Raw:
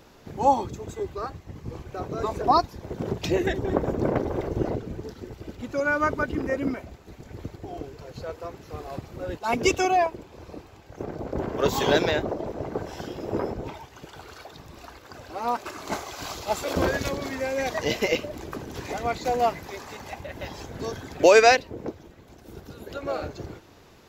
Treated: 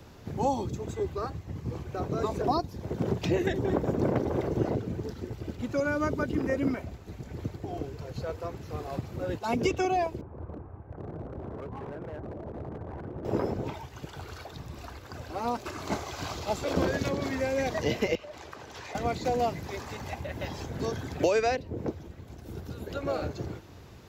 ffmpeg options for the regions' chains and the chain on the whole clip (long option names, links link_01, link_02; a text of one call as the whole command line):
ffmpeg -i in.wav -filter_complex "[0:a]asettb=1/sr,asplit=3[link_01][link_02][link_03];[link_01]atrim=end=10.214[link_04];[link_02]atrim=start=10.21:end=13.25,asetpts=PTS-STARTPTS,afade=type=in:duration=0.004:curve=qsin,afade=type=out:start_time=3.036:duration=0.004:curve=qsin,lowpass=frequency=1400:width=0.5412,lowpass=frequency=1400:width=1.3066,acompressor=threshold=-35dB:ratio=10:attack=3.2:release=140:knee=1:detection=peak,asoftclip=type=hard:threshold=-36dB[link_05];[link_03]atrim=start=13.246[link_06];[link_04][link_05]acrossfade=duration=0.004:curve1=hsin:curve2=qsin[link_07];[link_07][link_06]acrossfade=duration=0.004:curve1=qsin:curve2=hsin,asettb=1/sr,asplit=3[link_08][link_09][link_10];[link_08]atrim=end=18.154[link_11];[link_09]atrim=start=18.15:end=18.95,asetpts=PTS-STARTPTS,afade=type=in:duration=0.004:curve=qsin,afade=type=out:start_time=0.796:duration=0.004:curve=qsin,acrossover=split=540 7400:gain=0.112 1 0.251[link_12][link_13][link_14];[link_12][link_13][link_14]amix=inputs=3:normalize=0,acompressor=threshold=-38dB:ratio=3:attack=3.2:release=140:knee=1:detection=peak[link_15];[link_10]atrim=start=18.946[link_16];[link_11][link_15]acrossfade=duration=0.004:curve1=hsin:curve2=qsin[link_17];[link_17][link_16]acrossfade=duration=0.004:curve1=qsin:curve2=hsin,acrossover=split=140|640|2800|7400[link_18][link_19][link_20][link_21][link_22];[link_18]acompressor=threshold=-48dB:ratio=4[link_23];[link_19]acompressor=threshold=-26dB:ratio=4[link_24];[link_20]acompressor=threshold=-34dB:ratio=4[link_25];[link_21]acompressor=threshold=-42dB:ratio=4[link_26];[link_22]acompressor=threshold=-57dB:ratio=4[link_27];[link_23][link_24][link_25][link_26][link_27]amix=inputs=5:normalize=0,equalizer=frequency=90:width=0.72:gain=11.5,bandreject=frequency=50:width_type=h:width=6,bandreject=frequency=100:width_type=h:width=6,volume=-1dB" out.wav